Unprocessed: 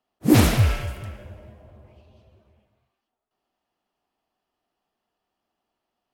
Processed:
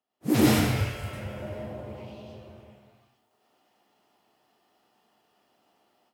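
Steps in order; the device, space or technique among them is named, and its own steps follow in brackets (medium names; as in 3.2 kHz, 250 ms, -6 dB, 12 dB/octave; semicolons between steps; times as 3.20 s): far laptop microphone (reverberation RT60 0.55 s, pre-delay 93 ms, DRR -4 dB; high-pass 120 Hz 12 dB/octave; level rider gain up to 14.5 dB); trim -7.5 dB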